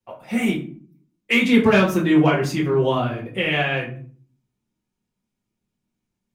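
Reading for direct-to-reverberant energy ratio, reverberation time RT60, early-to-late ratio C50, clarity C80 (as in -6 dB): -7.0 dB, 0.45 s, 8.5 dB, 13.5 dB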